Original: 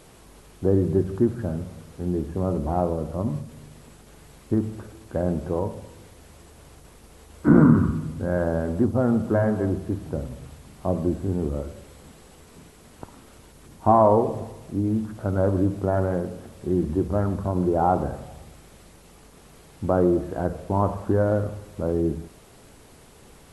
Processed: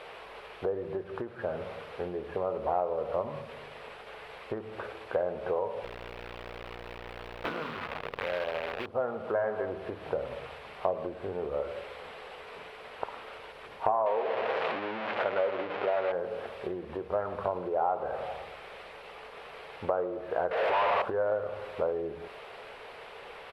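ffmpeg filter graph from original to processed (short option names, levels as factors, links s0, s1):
-filter_complex "[0:a]asettb=1/sr,asplit=3[s0][s1][s2];[s0]atrim=end=5.844[s3];[s1]atrim=start=5.84:end=8.86,asetpts=PTS-STARTPTS,afade=t=in:d=0.004:c=qsin,afade=t=out:st=3.016:d=0.004:c=qsin,highshelf=f=7700:g=-7,aeval=exprs='val(0)+0.0282*(sin(2*PI*60*n/s)+sin(2*PI*2*60*n/s)/2+sin(2*PI*3*60*n/s)/3+sin(2*PI*4*60*n/s)/4+sin(2*PI*5*60*n/s)/5)':c=same,acrusher=bits=5:dc=4:mix=0:aa=0.000001[s4];[s2]atrim=start=8.856[s5];[s3][s4]acrossfade=d=0.004:c1=hsin:c2=qsin[s6];[s6][s5]acrossfade=d=0.004:c1=qsin:c2=hsin,asettb=1/sr,asplit=3[s7][s8][s9];[s7]atrim=end=14.064[s10];[s8]atrim=start=14.06:end=16.12,asetpts=PTS-STARTPTS,afade=t=in:d=0.004:c=qsin,afade=t=out:st=2.056:d=0.004:c=qsin,aeval=exprs='val(0)+0.5*0.075*sgn(val(0))':c=same,highpass=190,lowpass=5700,aemphasis=mode=reproduction:type=cd[s11];[s9]atrim=start=16.116[s12];[s10][s11]acrossfade=d=0.004:c1=hsin:c2=qsin[s13];[s13][s12]acrossfade=d=0.004:c1=qsin:c2=hsin,asettb=1/sr,asplit=3[s14][s15][s16];[s14]atrim=end=20.514[s17];[s15]atrim=start=20.51:end=21.02,asetpts=PTS-STARTPTS,afade=t=in:d=0.004:c=qsin,afade=t=out:st=0.506:d=0.004:c=qsin,acompressor=threshold=0.0224:ratio=6:attack=3.2:release=140:knee=1:detection=peak,asplit=2[s18][s19];[s19]highpass=f=720:p=1,volume=158,asoftclip=type=tanh:threshold=0.075[s20];[s18][s20]amix=inputs=2:normalize=0,lowpass=f=1900:p=1,volume=0.501[s21];[s16]atrim=start=21.016[s22];[s17][s21]acrossfade=d=0.004:c1=hsin:c2=qsin[s23];[s23][s22]acrossfade=d=0.004:c1=qsin:c2=hsin,bass=f=250:g=-11,treble=f=4000:g=12,acompressor=threshold=0.0224:ratio=16,firequalizer=gain_entry='entry(130,0);entry(300,-5);entry(440,11);entry(2500,12);entry(6600,-25)':delay=0.05:min_phase=1,volume=0.794"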